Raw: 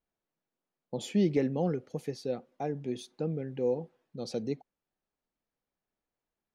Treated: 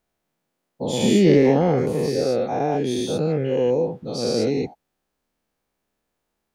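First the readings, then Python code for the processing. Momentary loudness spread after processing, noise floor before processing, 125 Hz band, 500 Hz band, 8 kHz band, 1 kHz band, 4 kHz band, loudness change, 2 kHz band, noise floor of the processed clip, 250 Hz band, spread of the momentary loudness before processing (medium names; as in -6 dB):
11 LU, under -85 dBFS, +11.5 dB, +13.5 dB, +16.0 dB, +15.5 dB, +16.0 dB, +13.0 dB, +15.5 dB, -78 dBFS, +12.0 dB, 12 LU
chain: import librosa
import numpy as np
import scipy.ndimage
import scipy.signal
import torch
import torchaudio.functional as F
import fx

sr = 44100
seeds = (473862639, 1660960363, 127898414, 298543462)

y = fx.spec_dilate(x, sr, span_ms=240)
y = y * 10.0 ** (6.5 / 20.0)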